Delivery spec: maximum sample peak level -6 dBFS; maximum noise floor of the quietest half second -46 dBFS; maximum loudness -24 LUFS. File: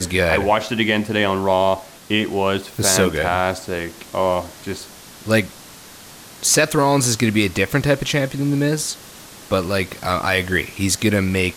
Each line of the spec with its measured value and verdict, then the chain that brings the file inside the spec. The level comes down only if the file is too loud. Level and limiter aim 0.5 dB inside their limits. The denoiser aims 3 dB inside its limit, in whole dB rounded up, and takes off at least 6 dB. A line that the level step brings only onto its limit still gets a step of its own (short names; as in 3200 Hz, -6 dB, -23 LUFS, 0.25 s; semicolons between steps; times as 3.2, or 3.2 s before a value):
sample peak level -4.5 dBFS: fail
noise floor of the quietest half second -41 dBFS: fail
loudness -19.0 LUFS: fail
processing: gain -5.5 dB